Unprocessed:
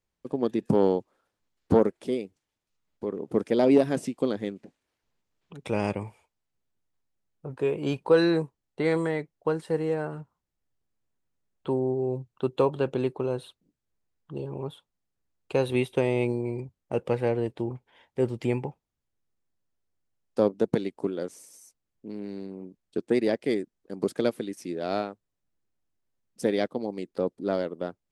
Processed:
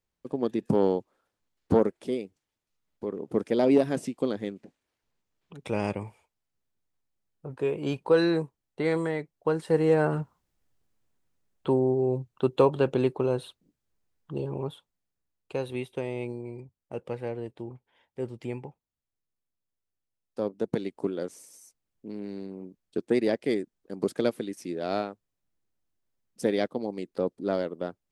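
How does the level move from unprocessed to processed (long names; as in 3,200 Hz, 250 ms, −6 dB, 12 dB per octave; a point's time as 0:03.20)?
0:09.35 −1.5 dB
0:10.14 +9 dB
0:11.88 +2.5 dB
0:14.52 +2.5 dB
0:15.76 −8 dB
0:20.39 −8 dB
0:20.98 −0.5 dB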